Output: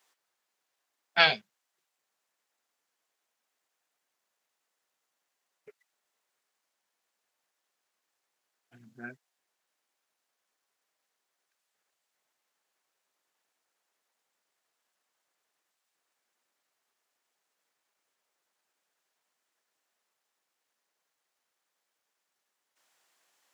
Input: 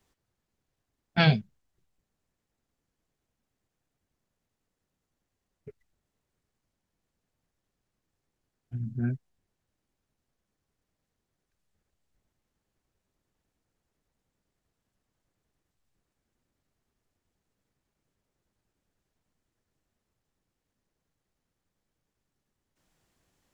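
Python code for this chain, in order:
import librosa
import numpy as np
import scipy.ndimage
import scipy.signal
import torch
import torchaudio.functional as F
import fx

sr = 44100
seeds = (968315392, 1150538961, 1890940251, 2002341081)

y = scipy.signal.sosfilt(scipy.signal.butter(2, 770.0, 'highpass', fs=sr, output='sos'), x)
y = y * librosa.db_to_amplitude(5.0)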